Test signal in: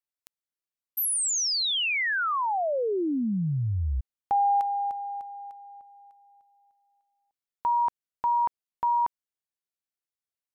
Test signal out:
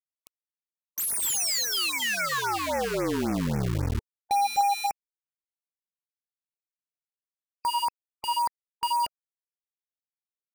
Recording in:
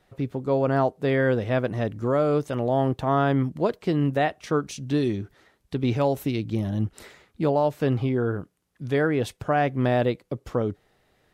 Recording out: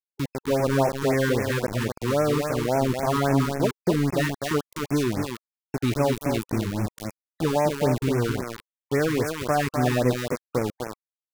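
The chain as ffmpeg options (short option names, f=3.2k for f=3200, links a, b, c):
-af "aecho=1:1:252:0.531,aeval=exprs='val(0)*gte(abs(val(0)),0.0562)':c=same,afftfilt=real='re*(1-between(b*sr/1024,590*pow(3800/590,0.5+0.5*sin(2*PI*3.7*pts/sr))/1.41,590*pow(3800/590,0.5+0.5*sin(2*PI*3.7*pts/sr))*1.41))':imag='im*(1-between(b*sr/1024,590*pow(3800/590,0.5+0.5*sin(2*PI*3.7*pts/sr))/1.41,590*pow(3800/590,0.5+0.5*sin(2*PI*3.7*pts/sr))*1.41))':win_size=1024:overlap=0.75"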